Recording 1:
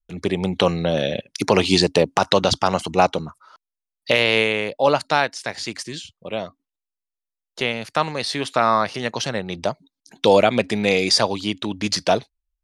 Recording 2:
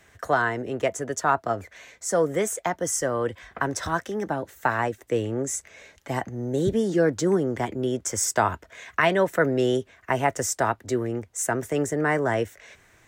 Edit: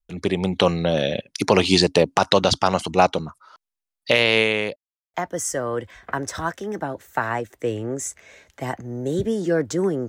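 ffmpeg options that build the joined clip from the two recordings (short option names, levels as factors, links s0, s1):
-filter_complex "[0:a]apad=whole_dur=10.08,atrim=end=10.08,asplit=2[s0][s1];[s0]atrim=end=4.76,asetpts=PTS-STARTPTS,afade=t=out:st=4.756:d=0.004:c=hsin[s2];[s1]atrim=start=4.76:end=5.14,asetpts=PTS-STARTPTS,volume=0[s3];[1:a]atrim=start=2.62:end=7.56,asetpts=PTS-STARTPTS,afade=t=in:d=0.004:c=hsin[s4];[s2][s3][s4]concat=n=3:v=0:a=1"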